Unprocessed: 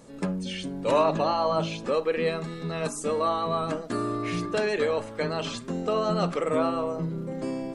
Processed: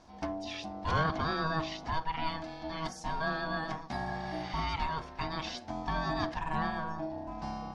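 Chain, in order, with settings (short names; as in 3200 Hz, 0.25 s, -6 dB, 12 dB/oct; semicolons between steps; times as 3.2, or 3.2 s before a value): spectral repair 4.08–4.58, 930–9100 Hz both; ring modulator 480 Hz; resonant high shelf 6700 Hz -8 dB, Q 3; gain -4.5 dB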